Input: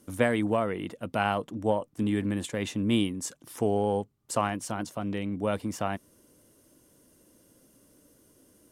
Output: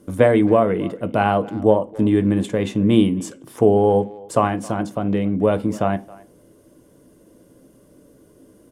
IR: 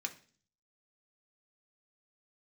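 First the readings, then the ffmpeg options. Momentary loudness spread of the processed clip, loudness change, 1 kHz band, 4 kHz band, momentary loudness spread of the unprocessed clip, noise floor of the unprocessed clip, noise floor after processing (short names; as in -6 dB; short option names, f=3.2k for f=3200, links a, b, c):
8 LU, +10.5 dB, +9.0 dB, +2.5 dB, 7 LU, -63 dBFS, -53 dBFS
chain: -filter_complex "[0:a]tiltshelf=f=1.4k:g=8,asplit=2[a][b];[b]adelay=270,highpass=300,lowpass=3.4k,asoftclip=type=hard:threshold=-13.5dB,volume=-21dB[c];[a][c]amix=inputs=2:normalize=0,asplit=2[d][e];[1:a]atrim=start_sample=2205,asetrate=61740,aresample=44100[f];[e][f]afir=irnorm=-1:irlink=0,volume=3.5dB[g];[d][g]amix=inputs=2:normalize=0,volume=1.5dB"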